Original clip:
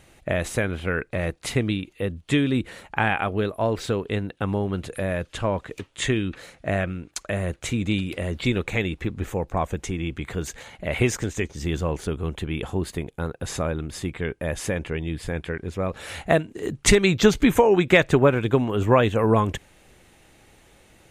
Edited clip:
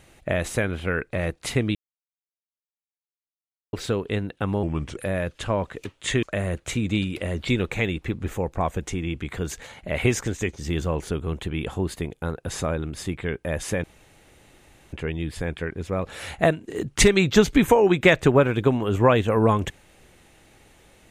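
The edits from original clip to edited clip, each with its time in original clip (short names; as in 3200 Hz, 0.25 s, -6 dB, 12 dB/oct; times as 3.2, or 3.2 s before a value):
1.75–3.73 mute
4.63–4.91 speed 83%
6.17–7.19 cut
14.8 insert room tone 1.09 s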